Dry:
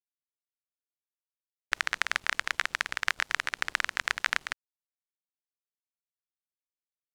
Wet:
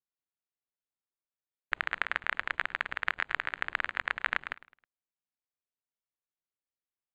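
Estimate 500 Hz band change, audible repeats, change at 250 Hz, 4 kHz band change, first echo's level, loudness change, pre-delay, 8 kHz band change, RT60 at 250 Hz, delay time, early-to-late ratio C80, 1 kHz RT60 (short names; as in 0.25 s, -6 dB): -0.5 dB, 3, 0.0 dB, -8.0 dB, -18.0 dB, -3.0 dB, none, under -20 dB, none, 0.106 s, none, none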